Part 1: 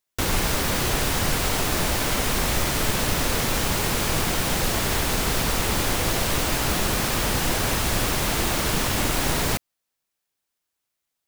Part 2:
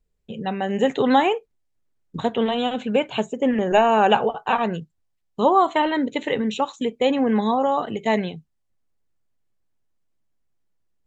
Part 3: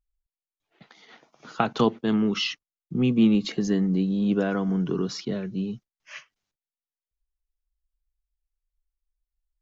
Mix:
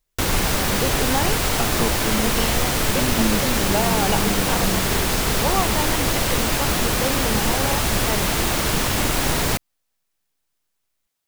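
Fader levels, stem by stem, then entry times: +2.5, -7.5, -4.0 dB; 0.00, 0.00, 0.00 s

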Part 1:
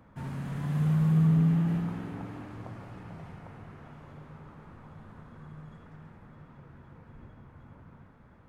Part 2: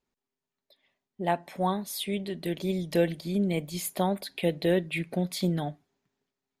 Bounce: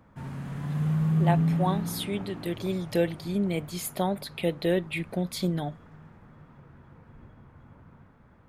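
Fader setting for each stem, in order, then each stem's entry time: -0.5, -0.5 dB; 0.00, 0.00 s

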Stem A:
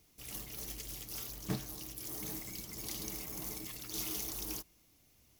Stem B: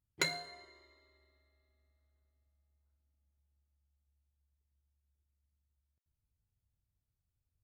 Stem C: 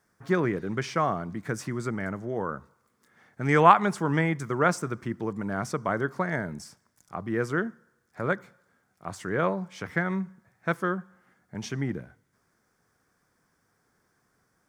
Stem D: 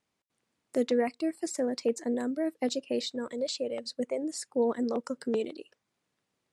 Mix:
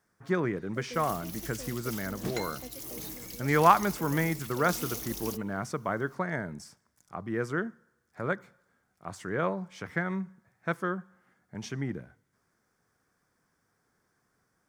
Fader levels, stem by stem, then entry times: +1.0, -6.5, -3.5, -16.5 dB; 0.75, 2.15, 0.00, 0.00 s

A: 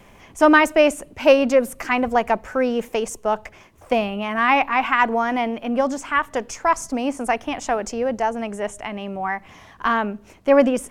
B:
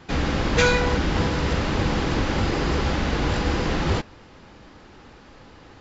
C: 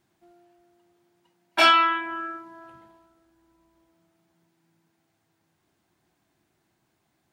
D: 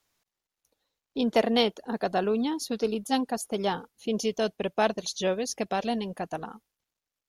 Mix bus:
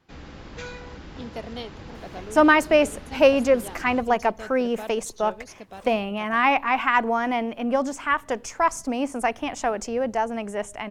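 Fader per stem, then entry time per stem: -2.5 dB, -18.5 dB, off, -12.5 dB; 1.95 s, 0.00 s, off, 0.00 s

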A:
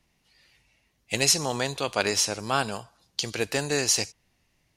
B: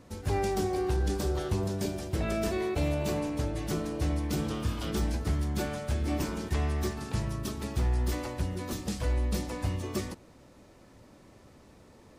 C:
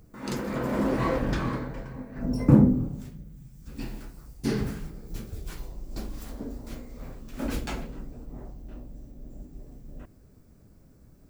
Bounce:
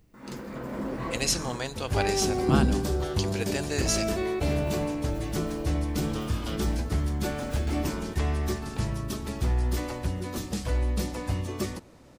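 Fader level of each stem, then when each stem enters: -5.5, +2.0, -7.0 dB; 0.00, 1.65, 0.00 s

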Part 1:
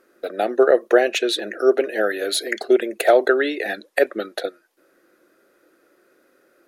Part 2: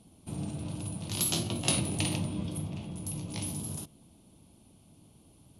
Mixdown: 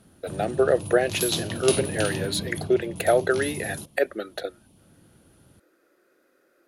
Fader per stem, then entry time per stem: -5.5, +1.5 dB; 0.00, 0.00 s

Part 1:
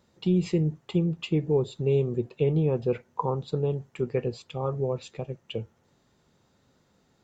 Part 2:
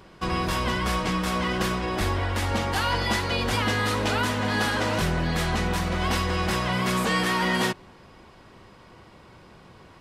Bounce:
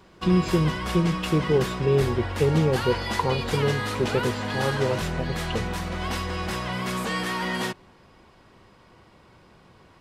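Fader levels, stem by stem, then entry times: +2.5, -4.0 dB; 0.00, 0.00 s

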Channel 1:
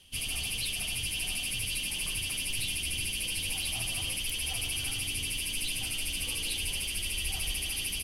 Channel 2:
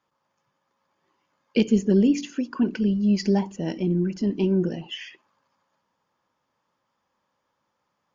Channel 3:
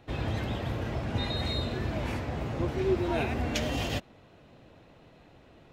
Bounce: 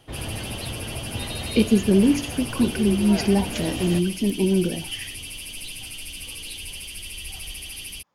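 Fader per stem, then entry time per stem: -2.5, +1.5, -1.0 dB; 0.00, 0.00, 0.00 s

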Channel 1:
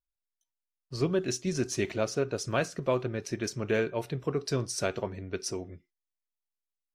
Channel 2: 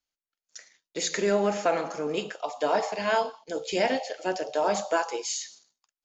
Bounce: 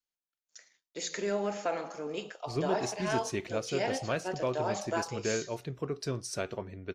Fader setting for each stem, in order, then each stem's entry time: -4.5, -7.5 dB; 1.55, 0.00 s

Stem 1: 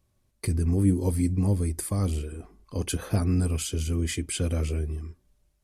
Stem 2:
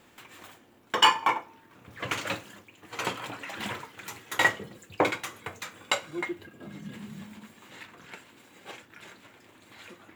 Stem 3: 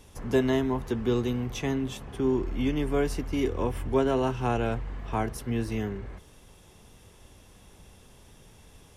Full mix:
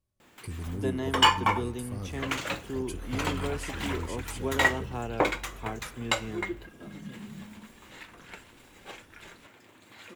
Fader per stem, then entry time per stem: -12.0, -0.5, -8.0 dB; 0.00, 0.20, 0.50 s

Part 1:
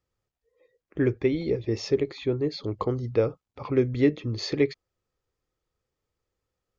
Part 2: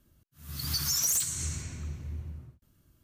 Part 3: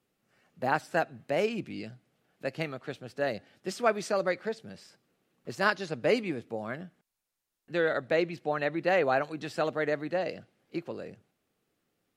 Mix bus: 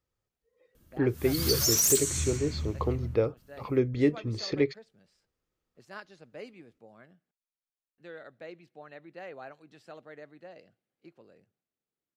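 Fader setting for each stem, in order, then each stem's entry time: -3.0, +3.0, -18.0 dB; 0.00, 0.75, 0.30 s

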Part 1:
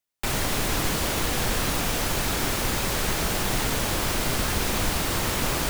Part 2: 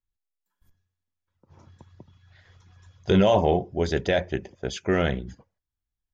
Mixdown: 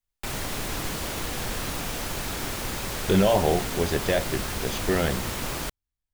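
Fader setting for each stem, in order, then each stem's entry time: -5.5, -1.5 dB; 0.00, 0.00 s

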